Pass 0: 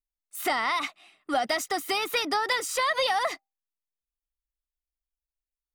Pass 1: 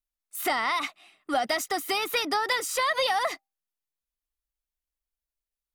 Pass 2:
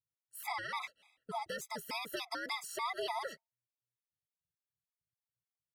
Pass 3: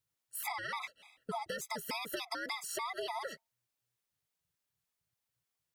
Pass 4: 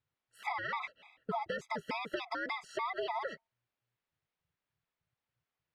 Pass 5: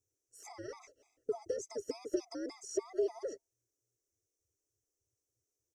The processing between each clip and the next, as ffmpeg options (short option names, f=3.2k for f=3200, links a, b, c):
-af "equalizer=f=12k:t=o:w=0.32:g=4.5"
-af "aeval=exprs='val(0)*sin(2*PI*120*n/s)':c=same,afftfilt=real='re*gt(sin(2*PI*3.4*pts/sr)*(1-2*mod(floor(b*sr/1024/660),2)),0)':imag='im*gt(sin(2*PI*3.4*pts/sr)*(1-2*mod(floor(b*sr/1024/660),2)),0)':win_size=1024:overlap=0.75,volume=-7dB"
-af "acompressor=threshold=-44dB:ratio=6,volume=8dB"
-af "lowpass=2.7k,volume=3dB"
-af "firequalizer=gain_entry='entry(110,0);entry(180,-27);entry(280,4);entry(400,8);entry(850,-19);entry(3800,-23);entry(5800,14);entry(11000,2)':delay=0.05:min_phase=1,volume=1dB"